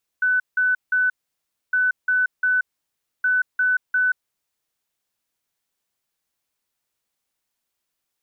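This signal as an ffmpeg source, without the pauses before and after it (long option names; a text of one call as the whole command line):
ffmpeg -f lavfi -i "aevalsrc='0.158*sin(2*PI*1500*t)*clip(min(mod(mod(t,1.51),0.35),0.18-mod(mod(t,1.51),0.35))/0.005,0,1)*lt(mod(t,1.51),1.05)':duration=4.53:sample_rate=44100" out.wav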